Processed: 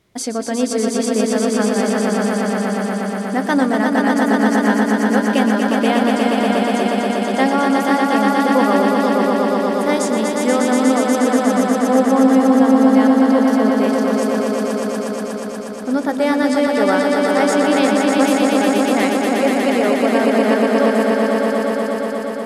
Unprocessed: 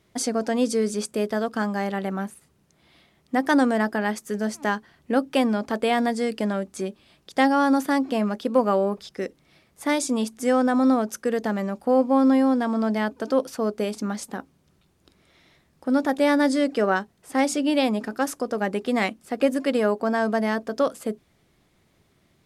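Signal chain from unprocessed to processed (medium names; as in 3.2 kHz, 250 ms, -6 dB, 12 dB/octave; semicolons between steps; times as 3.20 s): echo with a slow build-up 120 ms, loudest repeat 5, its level -4.5 dB; trim +2 dB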